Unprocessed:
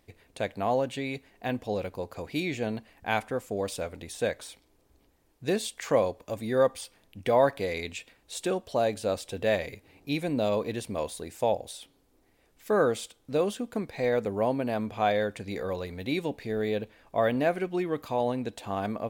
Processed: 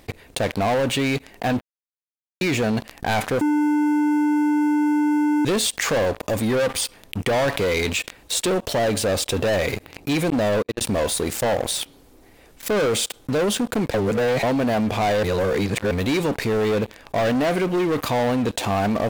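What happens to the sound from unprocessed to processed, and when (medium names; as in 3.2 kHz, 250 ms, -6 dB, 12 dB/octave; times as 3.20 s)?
1.61–2.41 s: mute
3.41–5.45 s: bleep 298 Hz -20 dBFS
10.30–10.81 s: gate -30 dBFS, range -53 dB
13.94–14.43 s: reverse
15.23–15.91 s: reverse
whole clip: waveshaping leveller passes 5; level flattener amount 50%; trim -6.5 dB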